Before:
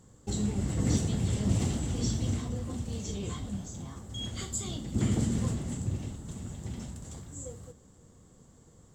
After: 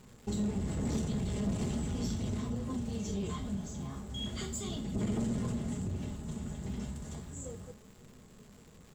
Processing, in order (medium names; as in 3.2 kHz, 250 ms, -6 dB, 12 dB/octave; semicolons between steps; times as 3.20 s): flange 0.37 Hz, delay 7.6 ms, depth 8 ms, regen +68%; saturation -32 dBFS, distortion -11 dB; comb 4.8 ms, depth 42%; crackle 440 per s -52 dBFS; in parallel at -0.5 dB: compression, threshold -39 dBFS, peak gain reduction 7 dB; on the sum: treble shelf 4.4 kHz -6.5 dB